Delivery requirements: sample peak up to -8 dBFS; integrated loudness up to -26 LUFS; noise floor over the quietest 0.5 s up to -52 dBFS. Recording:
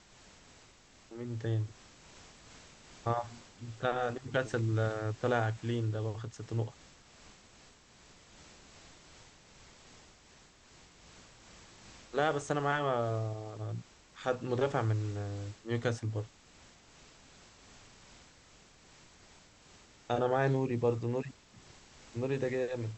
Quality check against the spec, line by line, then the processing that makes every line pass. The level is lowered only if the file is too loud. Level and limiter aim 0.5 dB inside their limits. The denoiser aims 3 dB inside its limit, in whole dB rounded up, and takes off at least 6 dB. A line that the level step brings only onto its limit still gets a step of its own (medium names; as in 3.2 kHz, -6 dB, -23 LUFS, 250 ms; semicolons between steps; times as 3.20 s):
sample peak -15.5 dBFS: pass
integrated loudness -34.5 LUFS: pass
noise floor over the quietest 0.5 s -60 dBFS: pass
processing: none needed